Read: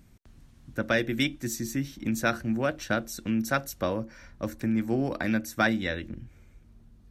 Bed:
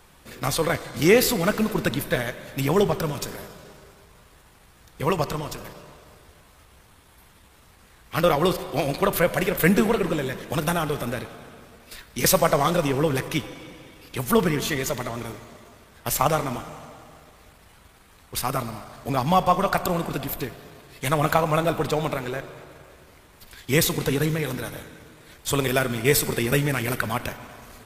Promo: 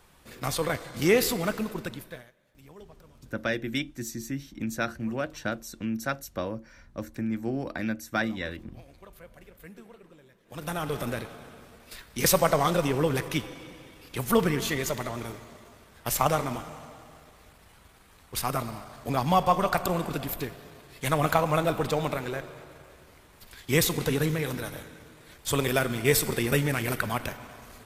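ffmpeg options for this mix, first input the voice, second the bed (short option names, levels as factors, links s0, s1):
-filter_complex "[0:a]adelay=2550,volume=0.668[s0];[1:a]volume=11.2,afade=t=out:st=1.33:d=0.97:silence=0.0630957,afade=t=in:st=10.44:d=0.57:silence=0.0501187[s1];[s0][s1]amix=inputs=2:normalize=0"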